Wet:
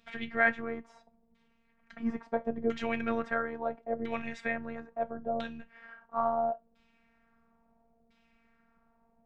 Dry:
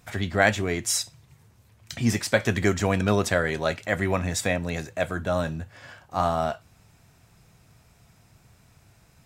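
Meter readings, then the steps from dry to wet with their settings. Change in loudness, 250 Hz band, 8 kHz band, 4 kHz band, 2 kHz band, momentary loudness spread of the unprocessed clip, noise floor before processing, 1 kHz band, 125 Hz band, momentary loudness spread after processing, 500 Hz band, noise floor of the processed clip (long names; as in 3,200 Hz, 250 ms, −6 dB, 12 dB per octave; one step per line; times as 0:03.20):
−8.0 dB, −8.0 dB, below −30 dB, −17.5 dB, −6.5 dB, 11 LU, −59 dBFS, −5.0 dB, −22.5 dB, 14 LU, −7.5 dB, −70 dBFS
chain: auto-filter low-pass saw down 0.74 Hz 500–3,500 Hz
phases set to zero 230 Hz
level −8 dB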